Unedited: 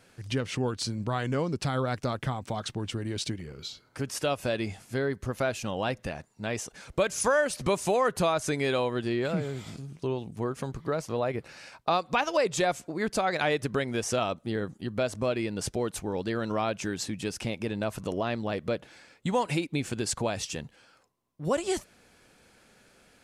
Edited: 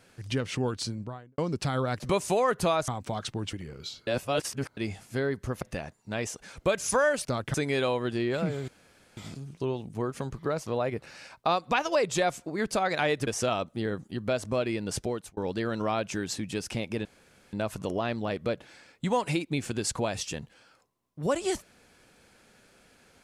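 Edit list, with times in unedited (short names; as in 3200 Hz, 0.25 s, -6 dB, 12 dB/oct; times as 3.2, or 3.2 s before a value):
0.75–1.38 studio fade out
2–2.29 swap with 7.57–8.45
2.94–3.32 cut
3.86–4.56 reverse
5.41–5.94 cut
9.59 insert room tone 0.49 s
13.69–13.97 cut
15.75–16.07 fade out
17.75 insert room tone 0.48 s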